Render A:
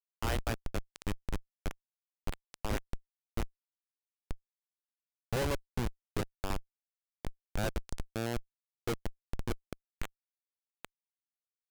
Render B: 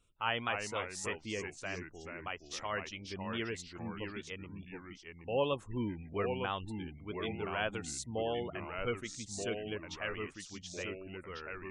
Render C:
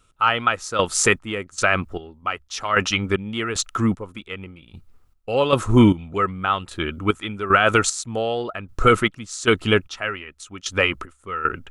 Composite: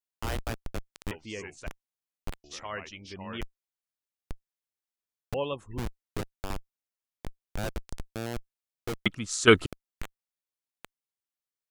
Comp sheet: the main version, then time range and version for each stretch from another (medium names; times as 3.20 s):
A
1.11–1.67 s: from B
2.44–3.41 s: from B
5.34–5.78 s: from B
9.06–9.66 s: from C